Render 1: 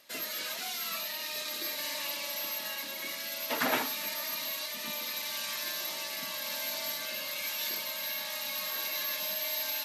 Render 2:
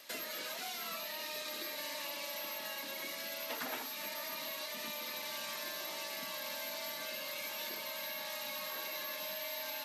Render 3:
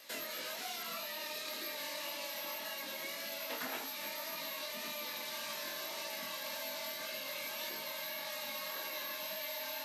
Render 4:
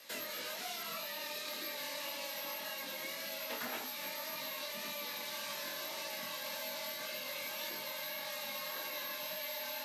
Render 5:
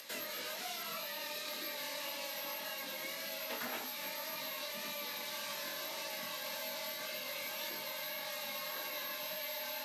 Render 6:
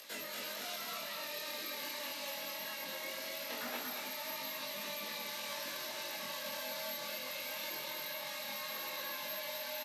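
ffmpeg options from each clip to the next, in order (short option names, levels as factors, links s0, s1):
-filter_complex "[0:a]acrossover=split=940|3100[s0][s1][s2];[s0]acompressor=threshold=0.00282:ratio=4[s3];[s1]acompressor=threshold=0.00224:ratio=4[s4];[s2]acompressor=threshold=0.00282:ratio=4[s5];[s3][s4][s5]amix=inputs=3:normalize=0,lowshelf=f=180:g=-8,volume=1.78"
-af "flanger=delay=18.5:depth=5.3:speed=1.8,volume=1.41"
-af "asoftclip=type=hard:threshold=0.0266,afreqshift=-14"
-af "acompressor=mode=upward:threshold=0.00447:ratio=2.5"
-af "flanger=delay=19:depth=4.6:speed=0.22,aecho=1:1:234:0.631,volume=1.19"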